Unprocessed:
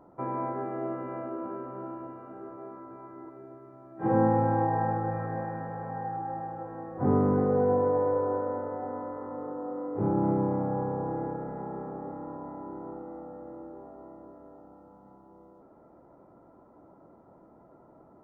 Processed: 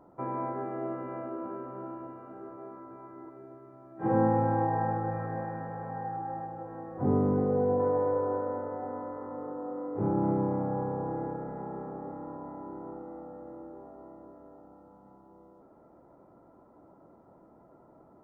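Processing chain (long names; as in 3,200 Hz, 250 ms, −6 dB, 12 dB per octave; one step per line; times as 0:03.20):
0:06.44–0:07.80: dynamic equaliser 1,500 Hz, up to −6 dB, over −44 dBFS, Q 0.94
level −1.5 dB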